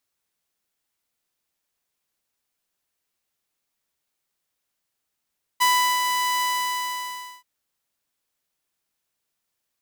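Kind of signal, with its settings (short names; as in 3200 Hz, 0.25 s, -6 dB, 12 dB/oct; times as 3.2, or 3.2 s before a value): ADSR saw 994 Hz, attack 19 ms, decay 0.375 s, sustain -5.5 dB, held 0.82 s, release 1.01 s -13 dBFS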